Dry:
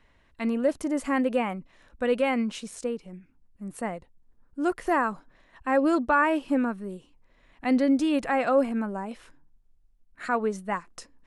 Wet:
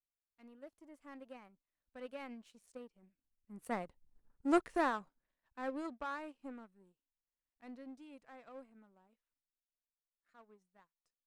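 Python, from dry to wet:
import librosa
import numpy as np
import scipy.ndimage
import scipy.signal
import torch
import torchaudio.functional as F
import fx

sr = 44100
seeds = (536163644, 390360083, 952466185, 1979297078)

y = fx.doppler_pass(x, sr, speed_mps=11, closest_m=2.4, pass_at_s=4.16)
y = fx.power_curve(y, sr, exponent=1.4)
y = y * librosa.db_to_amplitude(4.5)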